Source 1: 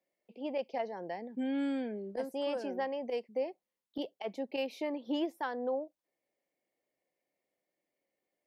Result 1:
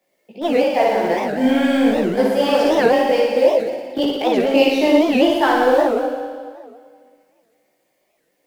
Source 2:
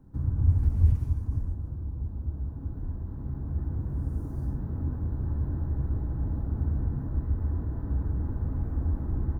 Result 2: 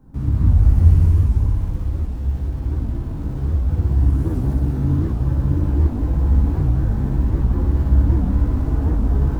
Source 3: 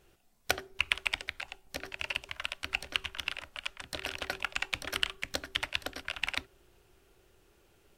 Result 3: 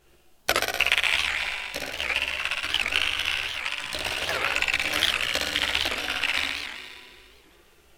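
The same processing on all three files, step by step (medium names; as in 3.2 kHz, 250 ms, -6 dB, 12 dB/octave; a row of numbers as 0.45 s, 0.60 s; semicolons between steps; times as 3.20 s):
backward echo that repeats 135 ms, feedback 64%, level -12 dB; bass shelf 270 Hz -2.5 dB; in parallel at -12 dB: small samples zeroed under -37 dBFS; on the sum: flutter echo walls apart 10.1 m, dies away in 1.5 s; chorus voices 4, 0.83 Hz, delay 17 ms, depth 3.4 ms; warped record 78 rpm, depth 250 cents; peak normalisation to -2 dBFS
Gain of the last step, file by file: +19.0 dB, +10.5 dB, +7.5 dB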